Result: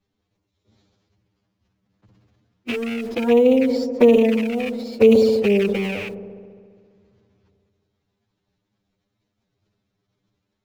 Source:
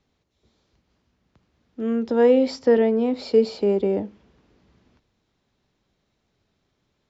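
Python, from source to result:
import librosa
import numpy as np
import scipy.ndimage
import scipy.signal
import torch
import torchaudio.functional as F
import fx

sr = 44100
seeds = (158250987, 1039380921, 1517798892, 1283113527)

p1 = fx.rattle_buzz(x, sr, strikes_db=-37.0, level_db=-15.0)
p2 = fx.peak_eq(p1, sr, hz=140.0, db=5.0, octaves=1.5)
p3 = fx.quant_dither(p2, sr, seeds[0], bits=6, dither='none')
p4 = p2 + F.gain(torch.from_numpy(p3), -7.0).numpy()
p5 = fx.transient(p4, sr, attack_db=6, sustain_db=-6)
p6 = fx.env_flanger(p5, sr, rest_ms=10.0, full_db=-7.0)
p7 = fx.stretch_vocoder(p6, sr, factor=1.5)
p8 = p7 + fx.echo_wet_lowpass(p7, sr, ms=68, feedback_pct=83, hz=720.0, wet_db=-15, dry=0)
p9 = fx.sustainer(p8, sr, db_per_s=31.0)
y = F.gain(torch.from_numpy(p9), -4.0).numpy()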